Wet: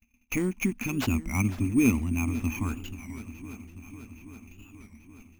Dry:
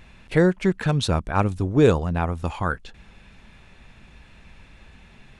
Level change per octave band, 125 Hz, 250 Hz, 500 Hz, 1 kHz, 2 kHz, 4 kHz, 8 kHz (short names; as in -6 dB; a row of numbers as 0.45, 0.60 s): -7.0, -2.0, -15.5, -13.5, -4.0, -10.0, +3.5 dB